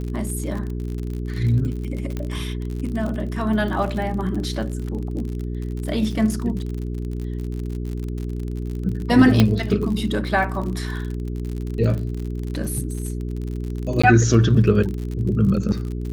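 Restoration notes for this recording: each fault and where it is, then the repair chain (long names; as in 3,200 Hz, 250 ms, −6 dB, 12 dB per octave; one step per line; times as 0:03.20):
surface crackle 52 per second −28 dBFS
mains hum 60 Hz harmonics 7 −27 dBFS
0:02.17: click −15 dBFS
0:09.40: click −3 dBFS
0:14.02–0:14.04: drop-out 15 ms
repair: click removal
hum removal 60 Hz, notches 7
repair the gap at 0:14.02, 15 ms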